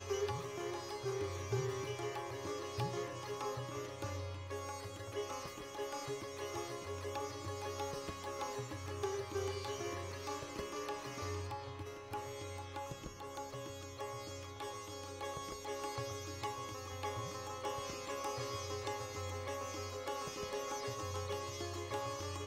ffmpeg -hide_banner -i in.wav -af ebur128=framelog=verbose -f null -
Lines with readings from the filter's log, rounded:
Integrated loudness:
  I:         -42.6 LUFS
  Threshold: -52.6 LUFS
Loudness range:
  LRA:         4.1 LU
  Threshold: -62.8 LUFS
  LRA low:   -45.3 LUFS
  LRA high:  -41.1 LUFS